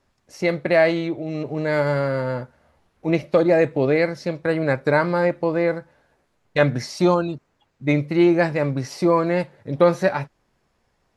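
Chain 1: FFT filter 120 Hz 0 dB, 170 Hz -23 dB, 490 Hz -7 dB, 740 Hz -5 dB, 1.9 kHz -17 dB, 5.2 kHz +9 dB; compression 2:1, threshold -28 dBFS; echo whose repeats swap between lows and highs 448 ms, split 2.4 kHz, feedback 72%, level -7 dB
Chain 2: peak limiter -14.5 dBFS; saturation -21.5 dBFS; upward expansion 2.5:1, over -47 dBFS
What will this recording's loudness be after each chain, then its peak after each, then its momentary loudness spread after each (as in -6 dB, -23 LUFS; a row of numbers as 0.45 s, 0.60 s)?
-31.5 LUFS, -32.0 LUFS; -15.5 dBFS, -22.0 dBFS; 9 LU, 10 LU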